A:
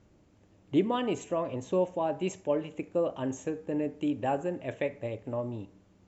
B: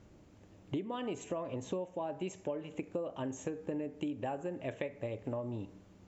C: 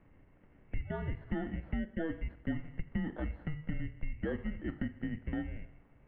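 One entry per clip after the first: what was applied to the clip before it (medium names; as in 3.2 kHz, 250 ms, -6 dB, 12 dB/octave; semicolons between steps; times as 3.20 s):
compression 12:1, threshold -37 dBFS, peak gain reduction 18 dB; trim +3 dB
bit-reversed sample order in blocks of 16 samples; mistuned SSB -320 Hz 260–2500 Hz; trim +3.5 dB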